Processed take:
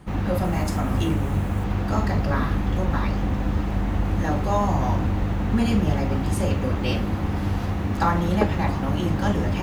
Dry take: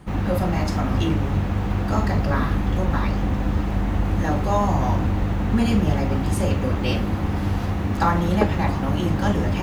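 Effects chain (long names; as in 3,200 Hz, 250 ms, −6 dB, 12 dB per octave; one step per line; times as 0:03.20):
0:00.44–0:01.64: high shelf with overshoot 6,700 Hz +6.5 dB, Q 1.5
level −1.5 dB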